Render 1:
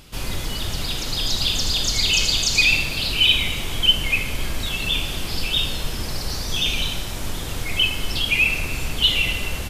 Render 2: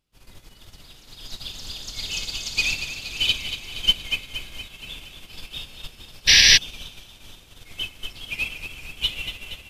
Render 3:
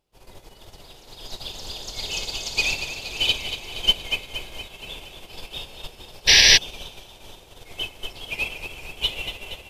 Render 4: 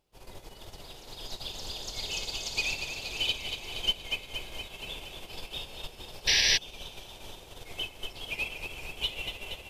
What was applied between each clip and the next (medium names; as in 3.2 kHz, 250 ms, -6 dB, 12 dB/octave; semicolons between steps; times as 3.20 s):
thinning echo 235 ms, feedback 80%, high-pass 680 Hz, level -5 dB; painted sound noise, 6.27–6.58 s, 1.6–6 kHz -11 dBFS; upward expansion 2.5:1, over -31 dBFS; trim -1 dB
high-order bell 590 Hz +9 dB
compression 1.5:1, threshold -41 dBFS, peak gain reduction 11 dB